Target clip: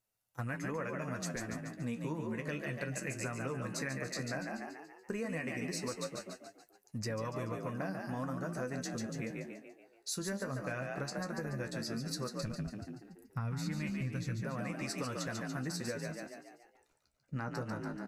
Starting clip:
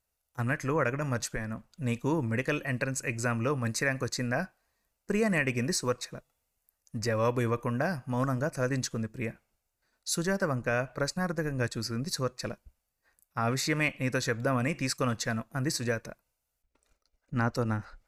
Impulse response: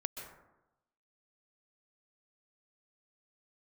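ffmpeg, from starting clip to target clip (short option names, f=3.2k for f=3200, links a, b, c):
-filter_complex "[0:a]asplit=3[a][b][c];[a]afade=t=out:st=12.38:d=0.02[d];[b]asubboost=boost=7.5:cutoff=160,afade=t=in:st=12.38:d=0.02,afade=t=out:st=14.4:d=0.02[e];[c]afade=t=in:st=14.4:d=0.02[f];[d][e][f]amix=inputs=3:normalize=0,asplit=7[g][h][i][j][k][l][m];[h]adelay=143,afreqshift=47,volume=-5.5dB[n];[i]adelay=286,afreqshift=94,volume=-11.7dB[o];[j]adelay=429,afreqshift=141,volume=-17.9dB[p];[k]adelay=572,afreqshift=188,volume=-24.1dB[q];[l]adelay=715,afreqshift=235,volume=-30.3dB[r];[m]adelay=858,afreqshift=282,volume=-36.5dB[s];[g][n][o][p][q][r][s]amix=inputs=7:normalize=0,flanger=delay=9.1:depth=6.6:regen=44:speed=0.14:shape=triangular,lowshelf=f=100:t=q:w=1.5:g=-7,acompressor=threshold=-35dB:ratio=6"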